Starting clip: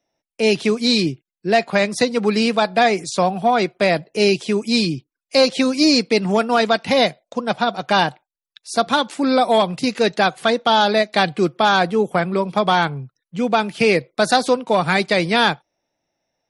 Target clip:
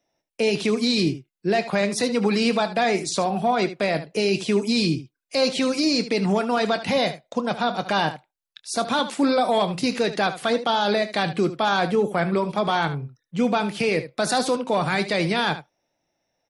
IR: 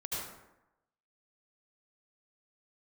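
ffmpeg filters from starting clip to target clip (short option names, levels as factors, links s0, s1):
-af "alimiter=limit=0.224:level=0:latency=1:release=22,aecho=1:1:25|75:0.188|0.224"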